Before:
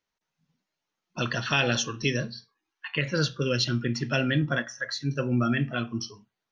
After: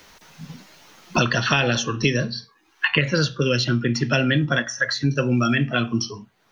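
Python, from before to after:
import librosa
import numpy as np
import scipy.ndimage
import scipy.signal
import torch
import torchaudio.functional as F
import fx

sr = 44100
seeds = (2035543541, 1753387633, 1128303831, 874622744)

y = fx.band_squash(x, sr, depth_pct=100)
y = F.gain(torch.from_numpy(y), 5.5).numpy()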